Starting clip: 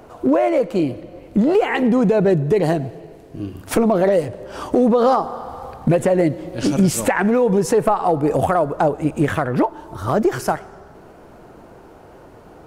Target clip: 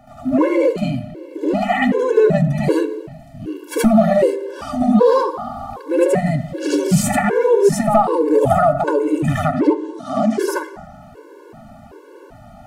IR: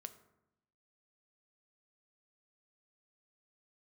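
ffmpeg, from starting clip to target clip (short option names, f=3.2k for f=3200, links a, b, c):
-filter_complex "[0:a]asettb=1/sr,asplit=3[a][b][c];[a]atrim=end=9.424[d];[b]atrim=start=9.42:end=10.39,asetpts=PTS-STARTPTS,afade=t=in:d=0.004:c=qsin,afade=t=out:st=0.966:d=0.004:c=qsin,highpass=f=210:w=0.5412,highpass=f=210:w=1.3066,equalizer=f=270:t=q:w=4:g=8,equalizer=f=950:t=q:w=4:g=-8,equalizer=f=1.5k:t=q:w=4:g=-9,lowpass=f=8.9k:w=0.5412,lowpass=f=8.9k:w=1.3066[e];[c]atrim=start=10.386[f];[d][e]acrossfade=d=0.004:c1=hsin:c2=qsin[g];[g][f]acrossfade=d=0.004:c1=qsin:c2=hsin,asplit=2[h][i];[1:a]atrim=start_sample=2205,adelay=75[j];[i][j]afir=irnorm=-1:irlink=0,volume=11dB[k];[h][k]amix=inputs=2:normalize=0,afftfilt=real='re*gt(sin(2*PI*1.3*pts/sr)*(1-2*mod(floor(b*sr/1024/290),2)),0)':imag='im*gt(sin(2*PI*1.3*pts/sr)*(1-2*mod(floor(b*sr/1024/290),2)),0)':win_size=1024:overlap=0.75,volume=-2dB"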